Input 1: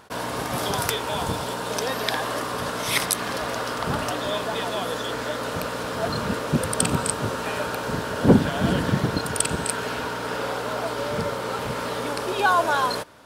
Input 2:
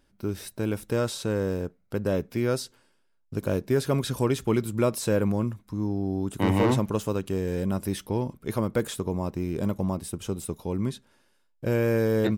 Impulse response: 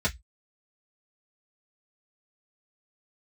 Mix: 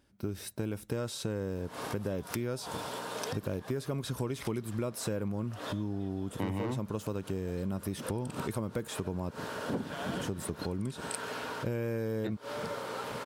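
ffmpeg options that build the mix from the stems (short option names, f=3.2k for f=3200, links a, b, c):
-filter_complex "[0:a]adelay=1450,volume=-9dB[a];[1:a]equalizer=f=62:w=0.45:g=10.5,volume=-1.5dB,asplit=3[b][c][d];[b]atrim=end=9.31,asetpts=PTS-STARTPTS,afade=t=out:st=9.306:d=0.004:c=hsin[e];[c]atrim=start=9.31:end=10.19,asetpts=PTS-STARTPTS,volume=0[f];[d]atrim=start=10.19,asetpts=PTS-STARTPTS,afade=t=in:d=0.004:c=hsin[g];[e][f][g]concat=n=3:v=0:a=1,asplit=2[h][i];[i]apad=whole_len=648313[j];[a][j]sidechaincompress=threshold=-39dB:ratio=6:attack=26:release=108[k];[k][h]amix=inputs=2:normalize=0,highpass=f=180:p=1,acompressor=threshold=-31dB:ratio=6"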